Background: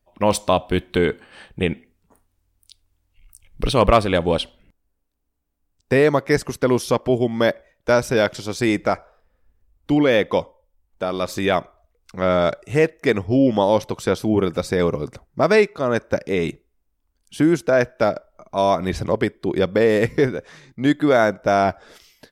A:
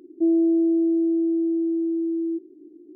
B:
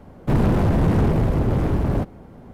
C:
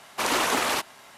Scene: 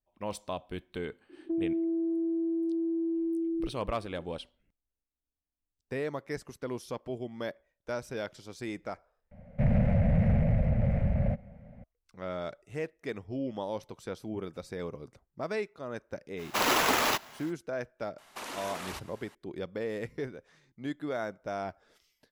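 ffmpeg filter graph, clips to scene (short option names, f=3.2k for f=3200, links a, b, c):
-filter_complex "[3:a]asplit=2[a][b];[0:a]volume=-18.5dB[c];[1:a]acompressor=threshold=-22dB:ratio=6:attack=3.2:release=140:knee=1:detection=peak[d];[2:a]firequalizer=gain_entry='entry(220,0);entry(330,-29);entry(560,4);entry(1000,-17);entry(2100,3);entry(3300,-14);entry(7400,-21)':delay=0.05:min_phase=1[e];[a]acrusher=samples=5:mix=1:aa=0.000001[f];[b]acompressor=threshold=-27dB:ratio=6:attack=3.2:release=140:knee=1:detection=peak[g];[c]asplit=2[h][i];[h]atrim=end=9.314[j];[e]atrim=end=2.53,asetpts=PTS-STARTPTS,volume=-6dB[k];[i]atrim=start=11.836[l];[d]atrim=end=2.95,asetpts=PTS-STARTPTS,volume=-6dB,afade=t=in:d=0.004:c=hsin,afade=t=out:st=2.946:d=0.004:c=hsin,adelay=1290[m];[f]atrim=end=1.17,asetpts=PTS-STARTPTS,volume=-1.5dB,afade=t=in:d=0.05,afade=t=out:st=1.12:d=0.05,adelay=721476S[n];[g]atrim=end=1.17,asetpts=PTS-STARTPTS,volume=-9.5dB,afade=t=in:d=0.004:c=hsin,afade=t=out:st=1.166:d=0.004:c=hsin,adelay=18180[o];[j][k]acrossfade=d=0.004:c1=hsin:c2=hsin[p];[p][l]acrossfade=d=0.004:c1=hsin:c2=hsin[q];[q][m][n][o]amix=inputs=4:normalize=0"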